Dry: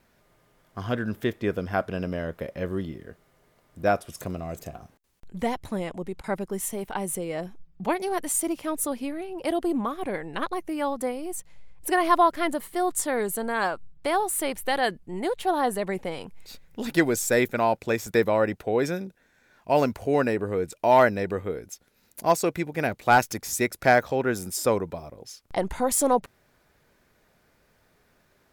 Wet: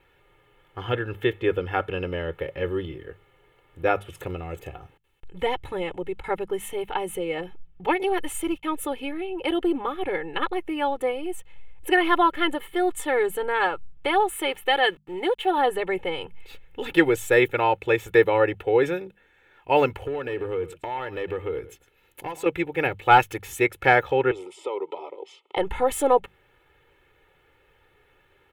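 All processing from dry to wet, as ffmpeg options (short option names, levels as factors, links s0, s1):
-filter_complex "[0:a]asettb=1/sr,asplit=3[s0][s1][s2];[s0]atrim=end=8.034[s3];[s1]atrim=start=8.03:end=8.63,asetpts=PTS-STARTPTS,afade=t=in:d=0.004:c=qsin,afade=t=out:st=0.596:d=0.004:c=qsin,agate=range=0.00447:threshold=0.0141:ratio=16:release=100:detection=peak,asubboost=boost=11:cutoff=200[s4];[s2]atrim=start=8.626[s5];[s3][s4]acrossfade=d=0.004:c1=hsin:c2=qsin[s6];[s6][s5]acrossfade=d=0.004:c1=qsin:c2=hsin,asettb=1/sr,asplit=3[s7][s8][s9];[s7]atrim=end=14.364[s10];[s8]atrim=start=14.36:end=15.58,asetpts=PTS-STARTPTS,afade=t=in:d=0.004:c=qsin,afade=t=out:st=1.216:d=0.004:c=qsin,lowshelf=f=110:g=-11.5,aeval=exprs='val(0)*gte(abs(val(0)),0.00335)':c=same[s11];[s9]atrim=start=15.576[s12];[s10][s11]acrossfade=d=0.004:c1=hsin:c2=qsin[s13];[s13][s12]acrossfade=d=0.004:c1=qsin:c2=hsin,asettb=1/sr,asplit=3[s14][s15][s16];[s14]atrim=end=20.044[s17];[s15]atrim=start=20.04:end=22.46,asetpts=PTS-STARTPTS,afade=t=in:d=0.004:c=qsin,afade=t=out:st=2.416:d=0.004:c=qsin,acompressor=threshold=0.0447:ratio=16:attack=3.2:release=140:knee=1:detection=peak,volume=20,asoftclip=hard,volume=0.0501,aecho=1:1:110:0.15,atrim=end_sample=106722[s18];[s16]atrim=start=22.456[s19];[s17][s18]acrossfade=d=0.004:c1=hsin:c2=qsin[s20];[s20][s19]acrossfade=d=0.004:c1=qsin:c2=hsin,asettb=1/sr,asplit=3[s21][s22][s23];[s21]atrim=end=24.314[s24];[s22]atrim=start=24.31:end=25.57,asetpts=PTS-STARTPTS,afade=t=in:d=0.004:c=qsin,afade=t=out:st=1.256:d=0.004:c=qsin,acompressor=threshold=0.02:ratio=5:attack=3.2:release=140:knee=1:detection=peak,asuperstop=centerf=1600:order=8:qfactor=2.7,highpass=f=300:w=0.5412,highpass=f=300:w=1.3066,equalizer=f=390:t=q:w=4:g=7,equalizer=f=640:t=q:w=4:g=4,equalizer=f=940:t=q:w=4:g=8,equalizer=f=1700:t=q:w=4:g=10,equalizer=f=3200:t=q:w=4:g=6,equalizer=f=6200:t=q:w=4:g=-5,lowpass=f=7700:w=0.5412,lowpass=f=7700:w=1.3066[s25];[s23]atrim=start=25.566[s26];[s24][s25]acrossfade=d=0.004:c1=hsin:c2=qsin[s27];[s27][s26]acrossfade=d=0.004:c1=qsin:c2=hsin,highshelf=f=3900:t=q:w=3:g=-9,bandreject=f=50:t=h:w=6,bandreject=f=100:t=h:w=6,bandreject=f=150:t=h:w=6,bandreject=f=200:t=h:w=6,aecho=1:1:2.3:0.88"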